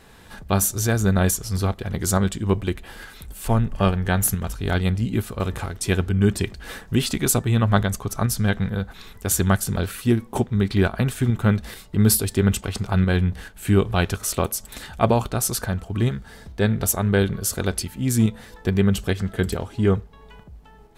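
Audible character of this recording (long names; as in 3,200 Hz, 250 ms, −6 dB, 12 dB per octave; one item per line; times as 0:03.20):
tremolo saw up 2.3 Hz, depth 40%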